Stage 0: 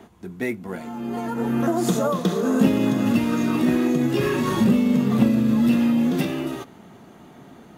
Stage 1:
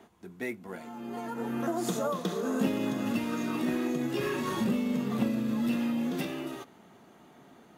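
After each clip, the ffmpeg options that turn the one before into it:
-af "lowshelf=f=200:g=-9,volume=-7dB"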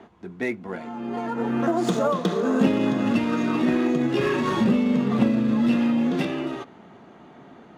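-af "adynamicsmooth=sensitivity=6:basefreq=3.8k,volume=8.5dB"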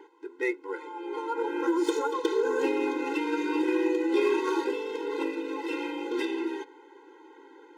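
-af "afftfilt=real='re*eq(mod(floor(b*sr/1024/270),2),1)':imag='im*eq(mod(floor(b*sr/1024/270),2),1)':win_size=1024:overlap=0.75"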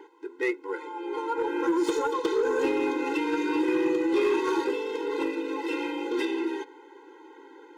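-af "asoftclip=type=tanh:threshold=-19dB,volume=2.5dB"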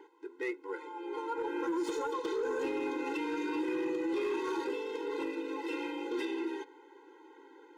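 -af "alimiter=limit=-21dB:level=0:latency=1:release=31,volume=-6.5dB"

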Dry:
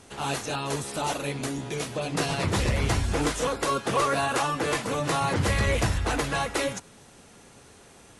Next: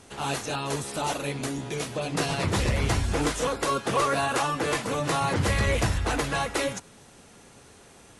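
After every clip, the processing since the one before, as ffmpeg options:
-af anull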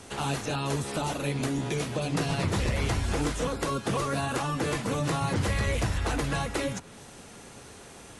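-filter_complex "[0:a]acrossover=split=270|3800[a][b][c];[a]acompressor=threshold=-31dB:ratio=4[d];[b]acompressor=threshold=-36dB:ratio=4[e];[c]acompressor=threshold=-46dB:ratio=4[f];[d][e][f]amix=inputs=3:normalize=0,volume=4.5dB"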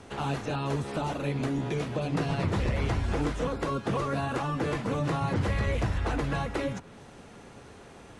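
-af "aemphasis=mode=reproduction:type=75kf"

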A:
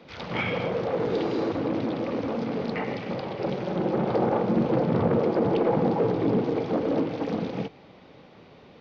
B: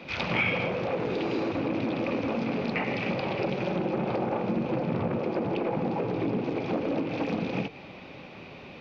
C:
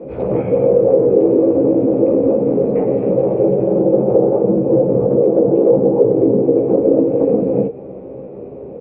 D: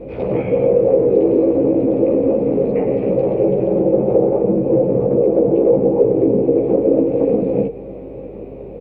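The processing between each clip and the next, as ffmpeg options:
-af "acompressor=threshold=-31dB:ratio=6,equalizer=f=2.5k:w=5.1:g=11.5,bandreject=f=460:w=13,volume=5.5dB"
-filter_complex "[0:a]lowpass=f=470:t=q:w=4.9,asplit=2[a][b];[b]adelay=15,volume=-2.5dB[c];[a][c]amix=inputs=2:normalize=0,volume=7.5dB"
-af "aexciter=amount=1.8:drive=8.4:freq=2k,aeval=exprs='val(0)+0.01*(sin(2*PI*50*n/s)+sin(2*PI*2*50*n/s)/2+sin(2*PI*3*50*n/s)/3+sin(2*PI*4*50*n/s)/4+sin(2*PI*5*50*n/s)/5)':c=same,aecho=1:1:1019:0.0708,volume=-1.5dB"

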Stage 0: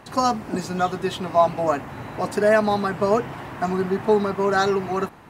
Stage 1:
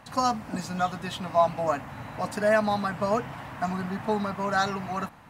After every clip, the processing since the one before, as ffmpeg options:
-af "equalizer=f=380:t=o:w=0.4:g=-14.5,volume=-3.5dB"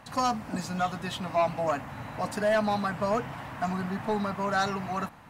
-af "asoftclip=type=tanh:threshold=-18.5dB"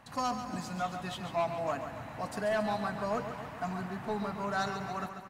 -af "aecho=1:1:139|278|417|556|695|834|973:0.355|0.209|0.124|0.0729|0.043|0.0254|0.015,volume=-6dB"

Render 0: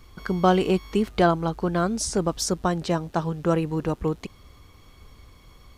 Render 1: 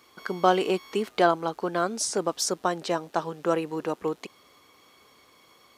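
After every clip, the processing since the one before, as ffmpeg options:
-af "highpass=350"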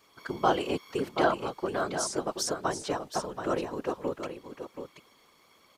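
-af "afftfilt=real='hypot(re,im)*cos(2*PI*random(0))':imag='hypot(re,im)*sin(2*PI*random(1))':win_size=512:overlap=0.75,aecho=1:1:729:0.376,volume=1.5dB"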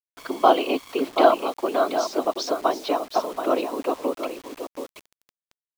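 -af "highpass=f=260:w=0.5412,highpass=f=260:w=1.3066,equalizer=f=270:t=q:w=4:g=7,equalizer=f=670:t=q:w=4:g=8,equalizer=f=1.1k:t=q:w=4:g=4,equalizer=f=1.7k:t=q:w=4:g=-7,equalizer=f=2.5k:t=q:w=4:g=5,equalizer=f=3.8k:t=q:w=4:g=5,lowpass=f=5.1k:w=0.5412,lowpass=f=5.1k:w=1.3066,acrusher=bits=7:mix=0:aa=0.000001,volume=4.5dB"

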